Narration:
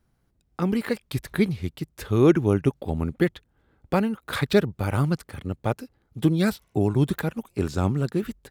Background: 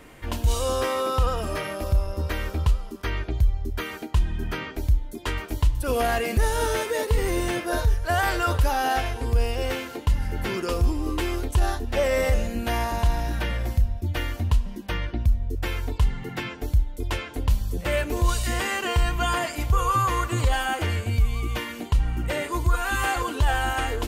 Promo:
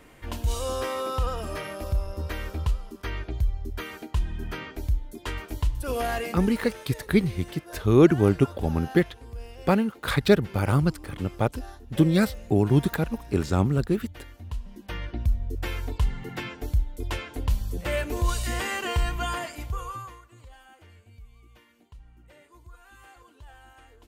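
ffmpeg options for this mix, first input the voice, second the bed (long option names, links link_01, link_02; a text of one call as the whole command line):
ffmpeg -i stem1.wav -i stem2.wav -filter_complex "[0:a]adelay=5750,volume=1dB[link_01];[1:a]volume=9.5dB,afade=type=out:start_time=6.23:duration=0.25:silence=0.237137,afade=type=in:start_time=14.39:duration=0.91:silence=0.199526,afade=type=out:start_time=18.98:duration=1.23:silence=0.0630957[link_02];[link_01][link_02]amix=inputs=2:normalize=0" out.wav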